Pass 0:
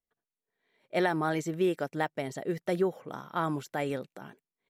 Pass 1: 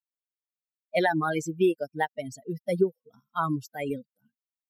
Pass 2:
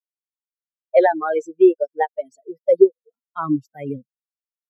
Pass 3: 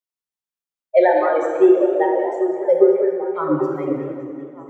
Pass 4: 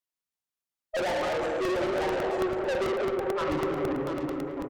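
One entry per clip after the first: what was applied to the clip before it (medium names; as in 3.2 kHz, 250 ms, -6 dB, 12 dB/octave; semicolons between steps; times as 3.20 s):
expander on every frequency bin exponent 3; trim +8 dB
expander -47 dBFS; high-pass sweep 470 Hz -> 120 Hz, 3.04–3.84 s; spectral contrast expander 1.5:1; trim +6.5 dB
repeats whose band climbs or falls 397 ms, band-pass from 260 Hz, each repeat 0.7 oct, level -7 dB; plate-style reverb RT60 1.7 s, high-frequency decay 0.8×, DRR 0.5 dB; modulated delay 190 ms, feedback 54%, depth 149 cents, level -12 dB; trim -1 dB
valve stage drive 27 dB, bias 0.25; on a send: delay 693 ms -8 dB; on the sum: crackling interface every 0.11 s, samples 64, repeat, from 0.77 s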